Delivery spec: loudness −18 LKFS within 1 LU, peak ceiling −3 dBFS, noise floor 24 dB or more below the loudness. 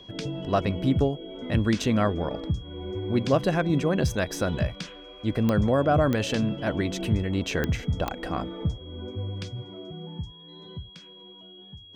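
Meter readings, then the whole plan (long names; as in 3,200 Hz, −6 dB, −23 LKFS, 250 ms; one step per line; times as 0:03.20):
number of clicks 4; interfering tone 3,300 Hz; level of the tone −47 dBFS; integrated loudness −26.5 LKFS; sample peak −9.0 dBFS; target loudness −18.0 LKFS
→ click removal
notch filter 3,300 Hz, Q 30
level +8.5 dB
brickwall limiter −3 dBFS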